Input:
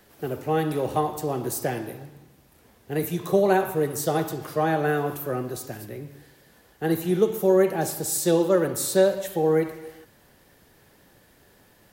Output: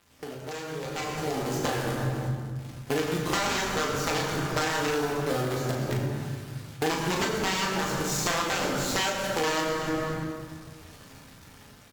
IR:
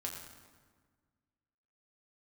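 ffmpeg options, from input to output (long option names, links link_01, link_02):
-filter_complex "[0:a]aresample=16000,aeval=exprs='(mod(6.31*val(0)+1,2)-1)/6.31':channel_layout=same,aresample=44100,bandreject=frequency=437.6:width_type=h:width=4,bandreject=frequency=875.2:width_type=h:width=4,bandreject=frequency=1312.8:width_type=h:width=4,acrossover=split=210[link_01][link_02];[link_01]aecho=1:1:180|324|439.2|531.4|605.1:0.631|0.398|0.251|0.158|0.1[link_03];[link_02]acrusher=bits=6:dc=4:mix=0:aa=0.000001[link_04];[link_03][link_04]amix=inputs=2:normalize=0,lowshelf=frequency=120:gain=-7[link_05];[1:a]atrim=start_sample=2205[link_06];[link_05][link_06]afir=irnorm=-1:irlink=0,acompressor=threshold=-36dB:ratio=16,asplit=2[link_07][link_08];[link_08]adelay=38,volume=-7dB[link_09];[link_07][link_09]amix=inputs=2:normalize=0,dynaudnorm=framelen=450:gausssize=5:maxgain=11.5dB" -ar 48000 -c:a aac -b:a 96k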